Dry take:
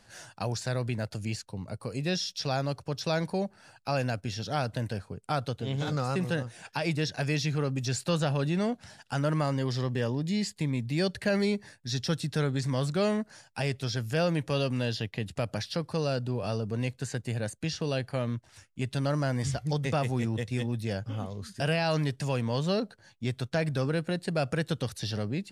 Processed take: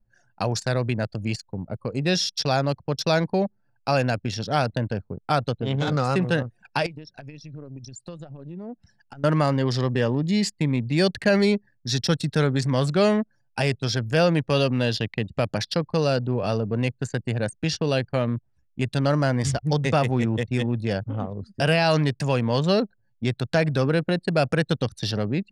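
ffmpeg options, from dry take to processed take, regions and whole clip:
-filter_complex "[0:a]asettb=1/sr,asplit=3[a][b][c];[a]atrim=end=6.864[d];[b]atrim=start=6.86:end=9.24,asetpts=PTS-STARTPTS,afade=t=in:d=0.004:c=qsin,afade=t=out:st=2.376:d=0.004:c=qsin,highshelf=f=2.7k:g=6,acompressor=threshold=-39dB:ratio=8:attack=3.2:release=140:knee=1:detection=peak[e];[c]atrim=start=9.236[f];[d][e]acrossfade=d=0.004:c1=hsin:c2=qsin[g];[g][f]acrossfade=d=0.004:c1=qsin:c2=hsin,anlmdn=1.58,equalizer=f=71:w=0.75:g=-4,volume=8dB"

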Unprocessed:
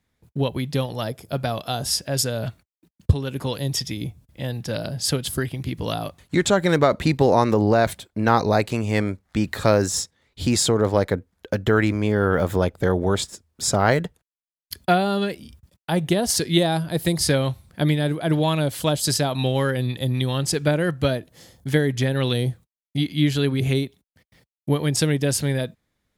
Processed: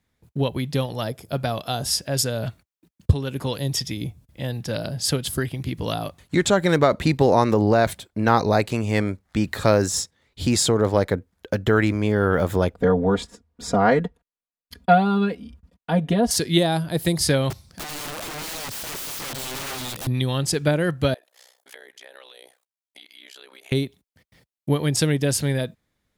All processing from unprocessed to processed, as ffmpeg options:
-filter_complex "[0:a]asettb=1/sr,asplit=3[a][b][c];[a]atrim=end=12.744[d];[b]atrim=start=12.74:end=16.31,asetpts=PTS-STARTPTS,afade=t=in:d=0.004:c=qsin,afade=t=out:st=3.566:d=0.004:c=qsin,lowpass=f=1.4k:p=1,aecho=1:1:4.2:0.9,atrim=end_sample=157437[e];[c]atrim=start=16.306[f];[d][e]acrossfade=d=0.004:c1=hsin:c2=qsin[g];[g][f]acrossfade=d=0.004:c1=qsin:c2=hsin,asettb=1/sr,asplit=3[h][i][j];[h]atrim=end=17.504[k];[i]atrim=start=17.5:end=20.07,asetpts=PTS-STARTPTS,afade=t=in:d=0.004:c=qsin,afade=t=out:st=2.566:d=0.004:c=qsin,equalizer=f=5.3k:t=o:w=0.82:g=14,acompressor=threshold=-24dB:ratio=2.5:attack=3.2:release=140:knee=1:detection=peak,aeval=exprs='(mod(23.7*val(0)+1,2)-1)/23.7':c=same[l];[j]atrim=start=20.066[m];[k][l]acrossfade=d=0.004:c1=hsin:c2=qsin[n];[n][m]acrossfade=d=0.004:c1=qsin:c2=hsin,asettb=1/sr,asplit=3[o][p][q];[o]atrim=end=21.144[r];[p]atrim=start=21.14:end=23.72,asetpts=PTS-STARTPTS,afade=t=in:d=0.004:c=qsin,afade=t=out:st=2.576:d=0.004:c=qsin,highpass=f=570:w=0.5412,highpass=f=570:w=1.3066,acompressor=threshold=-40dB:ratio=4:attack=3.2:release=140:knee=1:detection=peak,tremolo=f=63:d=0.974[s];[q]atrim=start=23.716[t];[r][s]acrossfade=d=0.004:c1=hsin:c2=qsin[u];[u][t]acrossfade=d=0.004:c1=qsin:c2=hsin"

